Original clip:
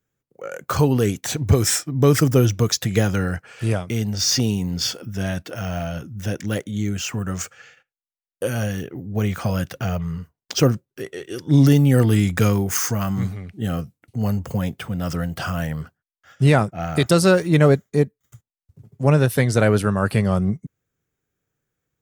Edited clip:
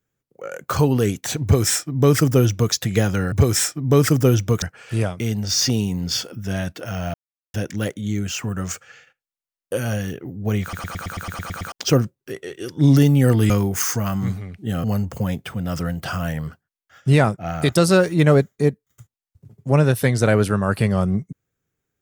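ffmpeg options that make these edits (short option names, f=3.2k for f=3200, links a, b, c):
-filter_complex "[0:a]asplit=17[a][b][c][d][e][f][g][h][i][j][k][l][m][n][o][p][q];[a]atrim=end=3.322[r];[b]atrim=start=1.428:end=2.732[s];[c]atrim=start=3.318:end=5.84,asetpts=PTS-STARTPTS,afade=t=out:st=2.518:d=0.004:c=hsin[t];[d]atrim=start=5.84:end=6.24,asetpts=PTS-STARTPTS,volume=0[u];[e]atrim=start=6.24:end=9.432,asetpts=PTS-STARTPTS,afade=t=in:d=0.004:c=hsin[v];[f]atrim=start=9.318:end=9.432[w];[g]atrim=start=9.318:end=9.432[x];[h]atrim=start=9.318:end=9.432[y];[i]atrim=start=9.318:end=9.432[z];[j]atrim=start=9.318:end=9.432[aa];[k]atrim=start=9.318:end=9.432[ab];[l]atrim=start=9.318:end=9.432[ac];[m]atrim=start=9.318:end=9.432[ad];[n]atrim=start=9.318:end=9.432[ae];[o]atrim=start=10.418:end=12.202[af];[p]atrim=start=12.448:end=13.792[ag];[q]atrim=start=14.178[ah];[r][s]acrossfade=d=0.004:c1=hsin:c2=hsin[ai];[t][u][v]concat=n=3:v=0:a=1[aj];[ai][aj]acrossfade=d=0.004:c1=hsin:c2=hsin[ak];[ak][w]acrossfade=d=0.004:c1=hsin:c2=hsin[al];[al][x]acrossfade=d=0.004:c1=hsin:c2=hsin[am];[am][y]acrossfade=d=0.004:c1=hsin:c2=hsin[an];[an][z]acrossfade=d=0.004:c1=hsin:c2=hsin[ao];[ao][aa]acrossfade=d=0.004:c1=hsin:c2=hsin[ap];[ap][ab]acrossfade=d=0.004:c1=hsin:c2=hsin[aq];[aq][ac]acrossfade=d=0.004:c1=hsin:c2=hsin[ar];[ar][ad]acrossfade=d=0.004:c1=hsin:c2=hsin[as];[as][ae]acrossfade=d=0.004:c1=hsin:c2=hsin[at];[at][af]acrossfade=d=0.004:c1=hsin:c2=hsin[au];[au][ag]acrossfade=d=0.004:c1=hsin:c2=hsin[av];[av][ah]acrossfade=d=0.004:c1=hsin:c2=hsin"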